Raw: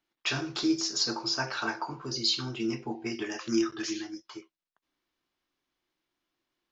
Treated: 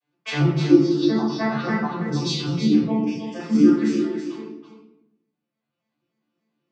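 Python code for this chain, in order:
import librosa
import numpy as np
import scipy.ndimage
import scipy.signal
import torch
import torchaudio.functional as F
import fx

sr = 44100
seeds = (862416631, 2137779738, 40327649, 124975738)

y = fx.vocoder_arp(x, sr, chord='minor triad', root=50, every_ms=98)
y = fx.steep_highpass(y, sr, hz=2600.0, slope=36, at=(2.92, 3.33), fade=0.02)
y = fx.dereverb_blind(y, sr, rt60_s=1.8)
y = fx.lowpass(y, sr, hz=4200.0, slope=24, at=(0.76, 1.45))
y = y + 10.0 ** (-8.5 / 20.0) * np.pad(y, (int(326 * sr / 1000.0), 0))[:len(y)]
y = fx.room_shoebox(y, sr, seeds[0], volume_m3=180.0, walls='mixed', distance_m=5.7)
y = y * 10.0 ** (-3.0 / 20.0)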